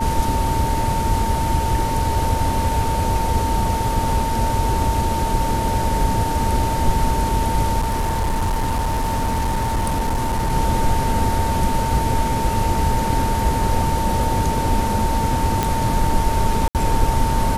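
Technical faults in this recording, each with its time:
tone 900 Hz -22 dBFS
7.79–10.53 clipped -16.5 dBFS
15.63 pop -4 dBFS
16.68–16.75 gap 68 ms

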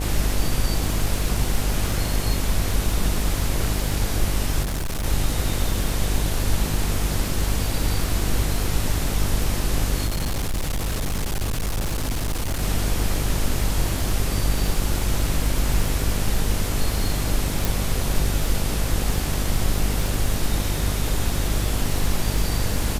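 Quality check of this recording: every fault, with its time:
buzz 50 Hz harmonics 17 -26 dBFS
crackle 67/s -26 dBFS
4.62–5.06 clipped -22.5 dBFS
10.06–12.63 clipped -20.5 dBFS
17.65 pop

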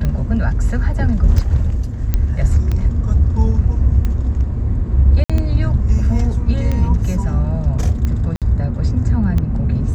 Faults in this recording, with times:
tick 45 rpm -10 dBFS
2.14 pop -5 dBFS
5.24–5.3 gap 56 ms
8.36–8.42 gap 57 ms

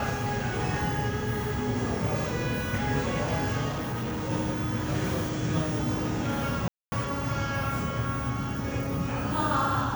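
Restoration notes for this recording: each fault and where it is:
3.68–4.31 clipped -28 dBFS
6.68–6.92 gap 0.24 s

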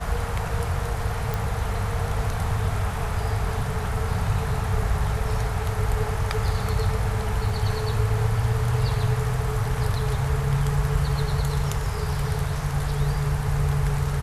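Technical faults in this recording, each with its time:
1.34 pop
7.49 gap 2.3 ms

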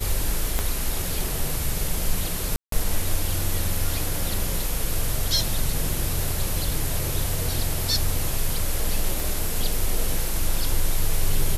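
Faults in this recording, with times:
0.59 pop -9 dBFS
2.56–2.72 gap 0.163 s
9.2 pop

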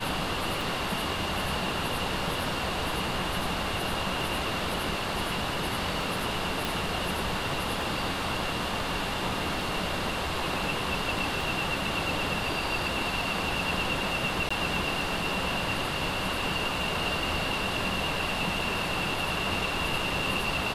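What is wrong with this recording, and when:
tick 33 1/3 rpm
6.65 pop
14.49–14.51 gap 15 ms

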